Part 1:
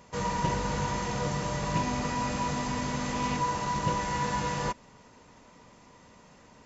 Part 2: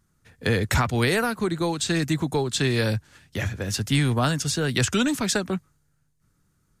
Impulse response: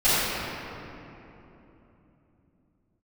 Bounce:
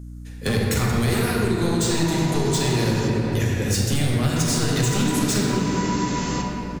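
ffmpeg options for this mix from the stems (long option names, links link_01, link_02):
-filter_complex "[0:a]highshelf=frequency=2900:gain=11.5,adelay=1700,volume=-2dB,asplit=3[link_01][link_02][link_03];[link_01]atrim=end=3.08,asetpts=PTS-STARTPTS,afade=type=out:start_time=3.076:duration=0.004:curve=hsin[link_04];[link_02]atrim=start=3.08:end=4.36,asetpts=PTS-STARTPTS,volume=0[link_05];[link_03]atrim=start=4.36,asetpts=PTS-STARTPTS,afade=type=in:duration=0.004:curve=hsin[link_06];[link_04][link_05][link_06]concat=n=3:v=0:a=1,asplit=2[link_07][link_08];[link_08]volume=-19dB[link_09];[1:a]firequalizer=gain_entry='entry(410,0);entry(590,-6);entry(6700,6)':delay=0.05:min_phase=1,asoftclip=type=hard:threshold=-22dB,volume=2.5dB,asplit=2[link_10][link_11];[link_11]volume=-13.5dB[link_12];[2:a]atrim=start_sample=2205[link_13];[link_09][link_12]amix=inputs=2:normalize=0[link_14];[link_14][link_13]afir=irnorm=-1:irlink=0[link_15];[link_07][link_10][link_15]amix=inputs=3:normalize=0,aeval=exprs='val(0)+0.0178*(sin(2*PI*60*n/s)+sin(2*PI*2*60*n/s)/2+sin(2*PI*3*60*n/s)/3+sin(2*PI*4*60*n/s)/4+sin(2*PI*5*60*n/s)/5)':channel_layout=same,acompressor=threshold=-19dB:ratio=3"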